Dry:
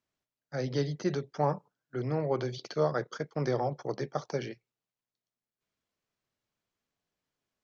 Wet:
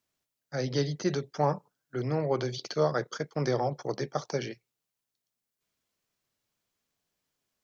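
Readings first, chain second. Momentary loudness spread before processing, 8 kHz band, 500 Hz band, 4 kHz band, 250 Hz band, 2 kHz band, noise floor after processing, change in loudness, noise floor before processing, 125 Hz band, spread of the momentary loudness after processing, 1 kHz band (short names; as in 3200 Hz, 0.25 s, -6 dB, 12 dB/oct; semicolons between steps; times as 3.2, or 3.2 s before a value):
9 LU, n/a, +1.5 dB, +5.5 dB, +1.5 dB, +2.5 dB, under -85 dBFS, +1.5 dB, under -85 dBFS, +1.5 dB, 9 LU, +2.0 dB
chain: high shelf 4300 Hz +8 dB; gain +1.5 dB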